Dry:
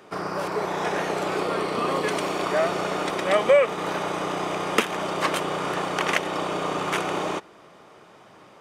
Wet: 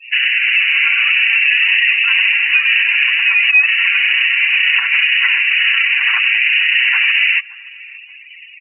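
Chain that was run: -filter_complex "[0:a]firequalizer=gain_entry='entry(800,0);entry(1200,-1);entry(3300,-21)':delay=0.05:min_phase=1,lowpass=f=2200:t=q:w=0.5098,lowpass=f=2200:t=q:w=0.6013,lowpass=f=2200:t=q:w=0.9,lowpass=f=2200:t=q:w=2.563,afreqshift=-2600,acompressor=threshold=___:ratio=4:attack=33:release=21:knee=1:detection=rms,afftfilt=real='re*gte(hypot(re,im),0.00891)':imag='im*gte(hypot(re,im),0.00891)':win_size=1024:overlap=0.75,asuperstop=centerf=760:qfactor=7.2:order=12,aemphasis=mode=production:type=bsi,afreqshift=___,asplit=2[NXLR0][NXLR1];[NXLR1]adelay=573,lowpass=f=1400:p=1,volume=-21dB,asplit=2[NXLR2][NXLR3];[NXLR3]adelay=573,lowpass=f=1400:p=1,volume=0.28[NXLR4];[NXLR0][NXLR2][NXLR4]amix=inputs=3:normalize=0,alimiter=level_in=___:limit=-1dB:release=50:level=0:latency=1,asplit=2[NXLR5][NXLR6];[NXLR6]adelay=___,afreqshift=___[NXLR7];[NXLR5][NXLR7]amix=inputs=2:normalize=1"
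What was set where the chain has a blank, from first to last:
-30dB, 490, 18dB, 7.3, 2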